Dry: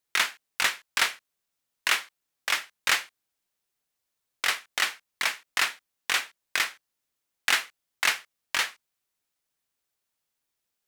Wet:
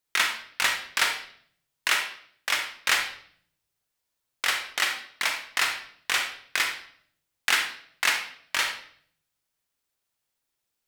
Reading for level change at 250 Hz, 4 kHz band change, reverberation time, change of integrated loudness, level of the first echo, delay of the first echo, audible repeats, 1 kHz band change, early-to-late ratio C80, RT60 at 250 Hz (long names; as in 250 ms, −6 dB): +1.5 dB, +1.5 dB, 0.60 s, +1.0 dB, no echo audible, no echo audible, no echo audible, +1.5 dB, 11.0 dB, 0.85 s